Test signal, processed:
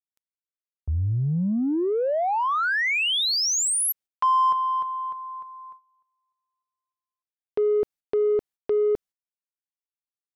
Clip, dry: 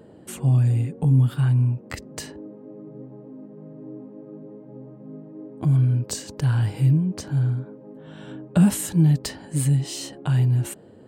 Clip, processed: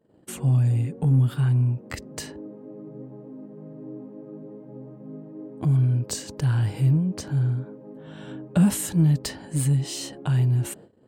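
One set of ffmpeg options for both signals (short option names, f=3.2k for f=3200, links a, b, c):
-filter_complex "[0:a]asplit=2[a][b];[b]asoftclip=type=tanh:threshold=-24dB,volume=-7dB[c];[a][c]amix=inputs=2:normalize=0,agate=range=-24dB:threshold=-42dB:ratio=16:detection=peak,volume=-3dB"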